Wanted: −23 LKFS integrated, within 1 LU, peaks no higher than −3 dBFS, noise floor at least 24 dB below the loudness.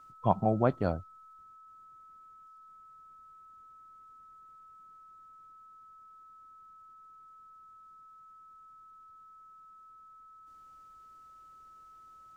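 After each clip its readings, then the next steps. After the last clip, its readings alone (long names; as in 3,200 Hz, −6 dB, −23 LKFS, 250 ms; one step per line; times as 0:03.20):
interfering tone 1,300 Hz; level of the tone −52 dBFS; integrated loudness −30.0 LKFS; sample peak −10.5 dBFS; target loudness −23.0 LKFS
→ notch filter 1,300 Hz, Q 30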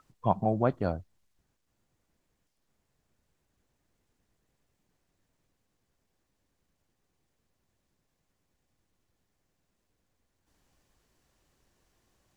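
interfering tone none found; integrated loudness −29.5 LKFS; sample peak −10.5 dBFS; target loudness −23.0 LKFS
→ level +6.5 dB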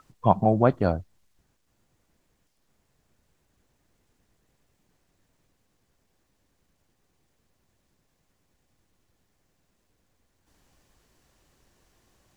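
integrated loudness −23.5 LKFS; sample peak −4.0 dBFS; background noise floor −72 dBFS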